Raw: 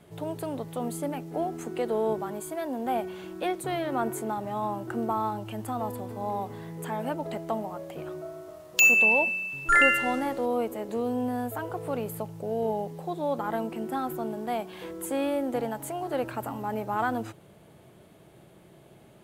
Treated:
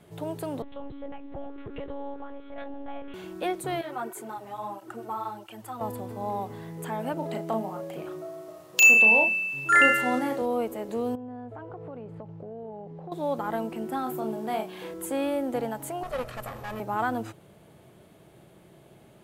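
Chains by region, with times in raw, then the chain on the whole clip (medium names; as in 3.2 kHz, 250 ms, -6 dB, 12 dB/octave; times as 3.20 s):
0.62–3.14 s: compression 2.5:1, threshold -35 dBFS + monotone LPC vocoder at 8 kHz 280 Hz
3.81–5.81 s: bass shelf 350 Hz -11 dB + cancelling through-zero flanger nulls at 1.5 Hz, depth 6.6 ms
7.13–10.42 s: high-pass 110 Hz 24 dB/octave + doubling 36 ms -5.5 dB
11.15–13.12 s: tape spacing loss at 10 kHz 39 dB + compression 4:1, threshold -37 dBFS
14.03–14.94 s: high-pass 140 Hz 6 dB/octave + doubling 32 ms -5 dB
16.03–16.80 s: comb filter that takes the minimum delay 1.6 ms + brick-wall FIR low-pass 14 kHz
whole clip: none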